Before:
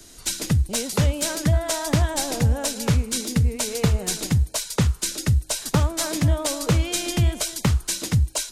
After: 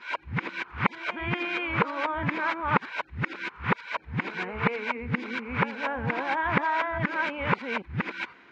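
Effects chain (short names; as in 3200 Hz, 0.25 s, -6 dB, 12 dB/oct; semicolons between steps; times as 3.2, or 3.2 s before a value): whole clip reversed; speaker cabinet 280–2400 Hz, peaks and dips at 300 Hz -6 dB, 440 Hz -4 dB, 630 Hz -9 dB, 1000 Hz +7 dB, 1500 Hz +6 dB, 2300 Hz +8 dB; gain +1.5 dB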